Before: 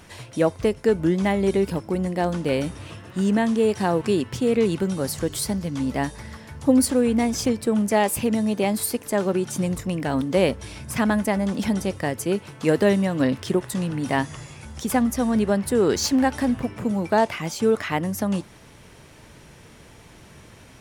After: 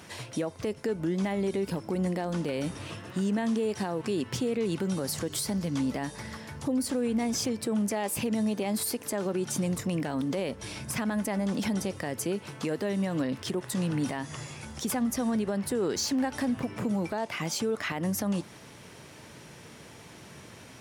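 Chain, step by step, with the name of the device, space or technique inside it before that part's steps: broadcast voice chain (high-pass 110 Hz 12 dB/octave; de-esser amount 35%; compression 4:1, threshold -24 dBFS, peak gain reduction 10.5 dB; peaking EQ 5.2 kHz +2 dB; peak limiter -21 dBFS, peak gain reduction 9 dB)

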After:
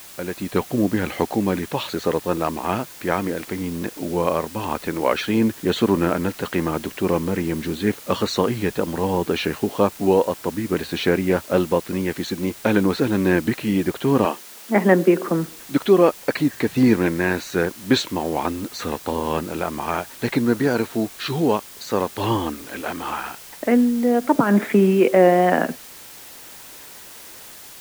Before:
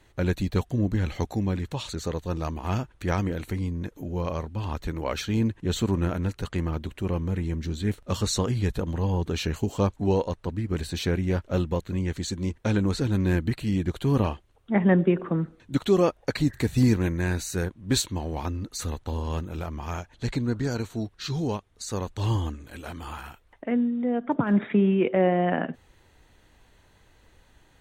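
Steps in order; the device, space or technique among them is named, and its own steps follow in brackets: dictaphone (band-pass 250–3000 Hz; level rider gain up to 13.5 dB; wow and flutter 28 cents; white noise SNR 20 dB); 14.25–15.28 s: high-pass 180 Hz 24 dB/octave; trim -1.5 dB

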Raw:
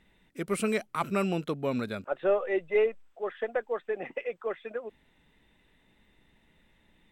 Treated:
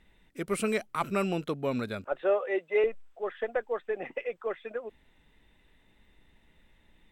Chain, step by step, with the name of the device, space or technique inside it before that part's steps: 2.21–2.84 s: high-pass 290 Hz 12 dB/octave; low shelf boost with a cut just above (bass shelf 83 Hz +6.5 dB; peaking EQ 170 Hz -3 dB 1.2 oct)

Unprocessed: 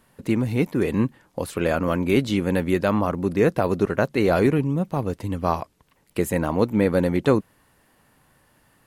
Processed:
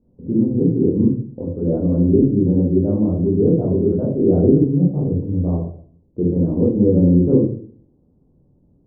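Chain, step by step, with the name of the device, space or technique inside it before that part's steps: next room (low-pass 450 Hz 24 dB/octave; reverberation RT60 0.50 s, pre-delay 17 ms, DRR -7 dB); trim -1 dB

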